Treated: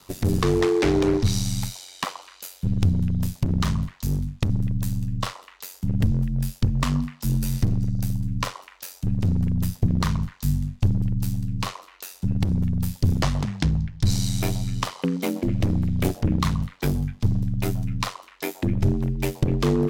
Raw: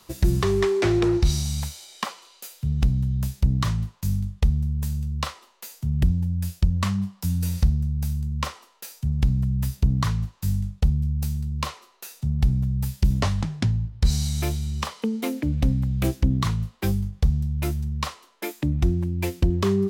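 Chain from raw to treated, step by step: repeats whose band climbs or falls 126 ms, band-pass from 750 Hz, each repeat 1.4 oct, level -11 dB; ring modulator 46 Hz; one-sided clip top -21 dBFS, bottom -14.5 dBFS; trim +4.5 dB

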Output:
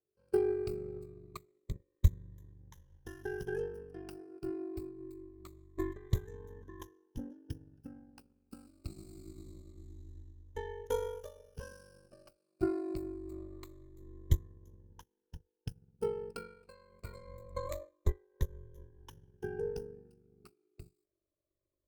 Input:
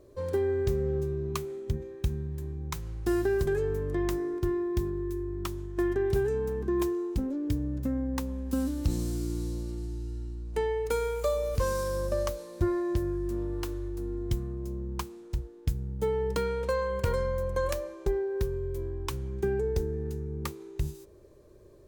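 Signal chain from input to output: drifting ripple filter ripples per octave 1.1, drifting -0.25 Hz, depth 15 dB; ring modulator 24 Hz; upward expansion 2.5:1, over -43 dBFS; trim +2.5 dB

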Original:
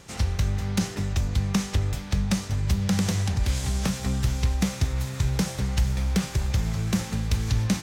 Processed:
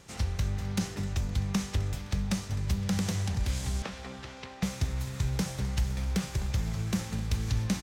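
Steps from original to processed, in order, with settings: 3.82–4.63 s: band-pass 340–3600 Hz; feedback delay 258 ms, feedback 54%, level -18 dB; trim -5.5 dB

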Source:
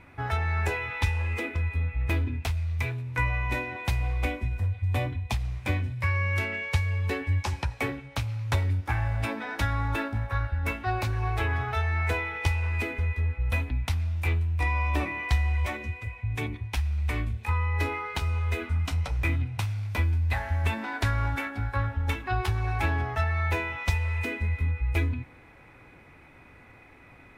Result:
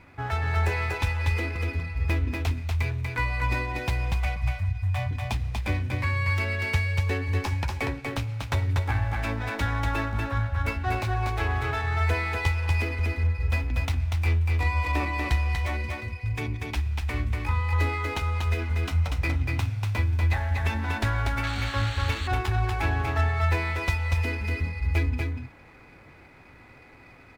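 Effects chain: 4.12–5.11 s: Chebyshev band-stop 200–610 Hz, order 4; on a send: delay 240 ms -3.5 dB; 21.43–22.28 s: on the sum: painted sound noise 1.1–4.6 kHz -37 dBFS; sliding maximum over 3 samples

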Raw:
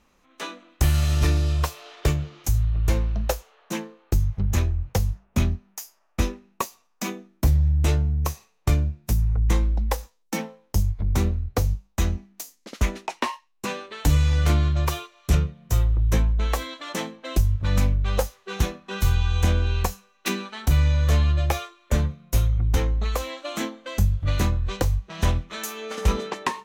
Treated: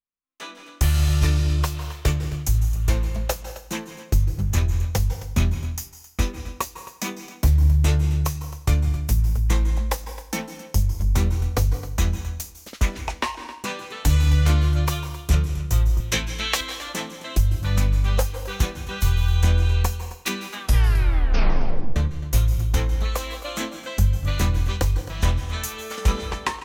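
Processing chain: peaking EQ 370 Hz -4.5 dB 2.9 oct; gate -48 dBFS, range -32 dB; 16.00–16.61 s: frequency weighting D; 20.47 s: tape stop 1.49 s; delay 265 ms -16 dB; reverberation RT60 0.75 s, pre-delay 148 ms, DRR 11 dB; level rider; trim -6 dB

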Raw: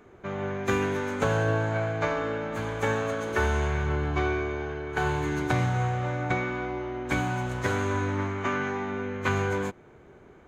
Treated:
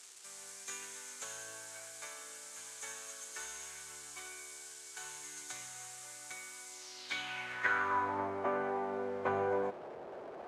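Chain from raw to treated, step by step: one-bit delta coder 64 kbps, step -36 dBFS; band-pass sweep 7.6 kHz -> 630 Hz, 6.68–8.31 s; trim +3 dB

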